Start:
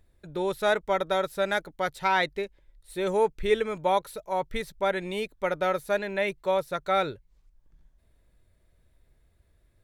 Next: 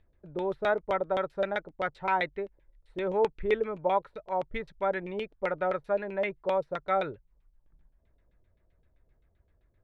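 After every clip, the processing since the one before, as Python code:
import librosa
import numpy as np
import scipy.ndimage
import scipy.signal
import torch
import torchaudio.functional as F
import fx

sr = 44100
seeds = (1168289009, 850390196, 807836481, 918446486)

y = fx.filter_lfo_lowpass(x, sr, shape='saw_down', hz=7.7, low_hz=470.0, high_hz=3300.0, q=1.4)
y = F.gain(torch.from_numpy(y), -4.0).numpy()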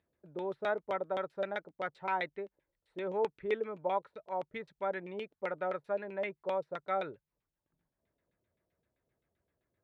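y = scipy.signal.sosfilt(scipy.signal.butter(2, 150.0, 'highpass', fs=sr, output='sos'), x)
y = F.gain(torch.from_numpy(y), -6.0).numpy()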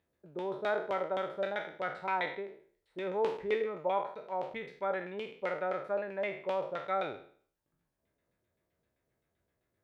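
y = fx.spec_trails(x, sr, decay_s=0.51)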